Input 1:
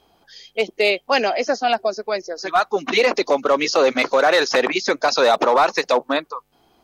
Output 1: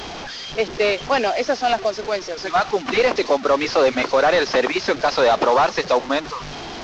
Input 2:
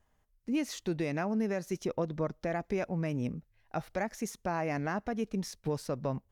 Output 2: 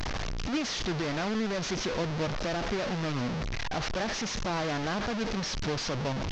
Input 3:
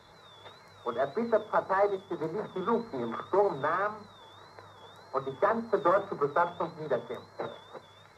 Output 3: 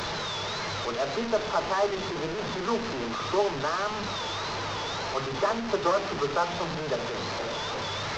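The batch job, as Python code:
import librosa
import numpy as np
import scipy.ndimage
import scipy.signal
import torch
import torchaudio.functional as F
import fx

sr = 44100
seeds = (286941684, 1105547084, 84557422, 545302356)

y = fx.delta_mod(x, sr, bps=32000, step_db=-26.0)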